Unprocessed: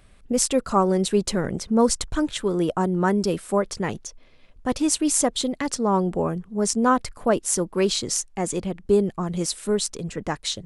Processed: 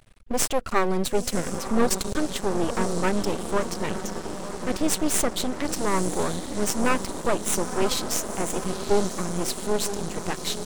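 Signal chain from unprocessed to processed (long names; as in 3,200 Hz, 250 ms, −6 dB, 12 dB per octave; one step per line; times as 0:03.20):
feedback delay with all-pass diffusion 981 ms, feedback 68%, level −10 dB
half-wave rectification
level +2 dB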